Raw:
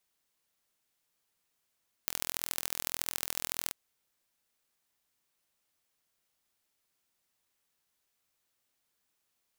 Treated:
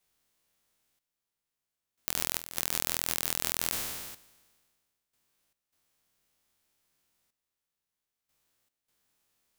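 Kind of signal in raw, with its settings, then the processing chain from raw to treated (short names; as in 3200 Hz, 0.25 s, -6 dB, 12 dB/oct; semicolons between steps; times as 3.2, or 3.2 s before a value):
pulse train 41.7/s, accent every 3, -3.5 dBFS 1.64 s
spectral trails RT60 1.88 s; low shelf 330 Hz +4.5 dB; step gate "xxxxx.....xx.xxx" 76 bpm -12 dB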